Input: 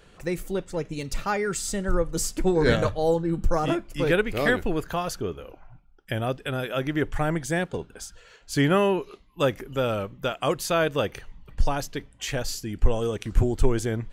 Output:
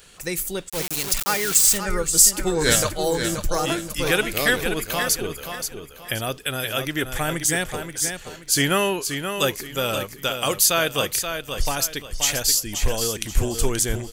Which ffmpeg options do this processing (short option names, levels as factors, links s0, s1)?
-filter_complex "[0:a]aecho=1:1:529|1058|1587|2116:0.422|0.135|0.0432|0.0138,asplit=3[s0][s1][s2];[s0]afade=t=out:st=0.68:d=0.02[s3];[s1]aeval=exprs='val(0)*gte(abs(val(0)),0.0266)':c=same,afade=t=in:st=0.68:d=0.02,afade=t=out:st=1.77:d=0.02[s4];[s2]afade=t=in:st=1.77:d=0.02[s5];[s3][s4][s5]amix=inputs=3:normalize=0,crystalizer=i=7.5:c=0,volume=0.75"